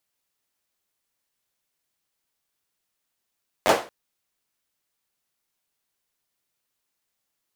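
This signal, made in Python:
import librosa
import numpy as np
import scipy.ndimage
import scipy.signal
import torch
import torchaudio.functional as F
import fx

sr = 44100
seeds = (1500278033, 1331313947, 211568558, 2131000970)

y = fx.drum_clap(sr, seeds[0], length_s=0.23, bursts=4, spacing_ms=10, hz=570.0, decay_s=0.34)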